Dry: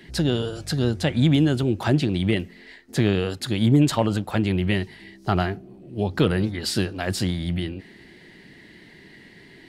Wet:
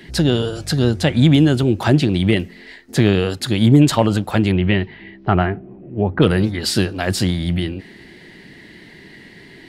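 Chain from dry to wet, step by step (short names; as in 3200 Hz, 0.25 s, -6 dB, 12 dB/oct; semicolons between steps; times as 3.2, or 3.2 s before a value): 4.51–6.21 LPF 3800 Hz -> 1900 Hz 24 dB/oct; gain +6 dB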